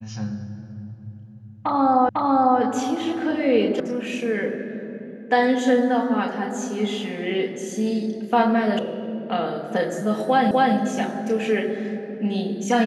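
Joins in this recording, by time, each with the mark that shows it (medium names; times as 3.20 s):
2.09 s: repeat of the last 0.5 s
3.80 s: sound stops dead
8.79 s: sound stops dead
10.51 s: repeat of the last 0.25 s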